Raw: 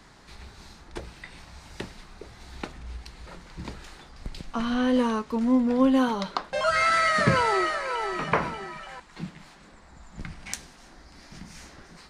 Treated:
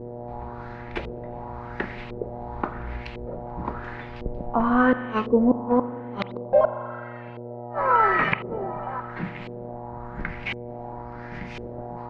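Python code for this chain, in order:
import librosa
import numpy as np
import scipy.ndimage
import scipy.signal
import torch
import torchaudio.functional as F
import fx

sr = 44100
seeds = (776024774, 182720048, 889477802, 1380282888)

y = fx.dynamic_eq(x, sr, hz=110.0, q=1.2, threshold_db=-43.0, ratio=4.0, max_db=-5)
y = fx.gate_flip(y, sr, shuts_db=-16.0, range_db=-36)
y = fx.rev_spring(y, sr, rt60_s=2.5, pass_ms=(41,), chirp_ms=65, drr_db=11.5)
y = fx.dmg_buzz(y, sr, base_hz=120.0, harmonics=8, level_db=-45.0, tilt_db=-3, odd_only=False)
y = fx.filter_lfo_lowpass(y, sr, shape='saw_up', hz=0.95, low_hz=430.0, high_hz=2900.0, q=2.8)
y = y * librosa.db_to_amplitude(5.0)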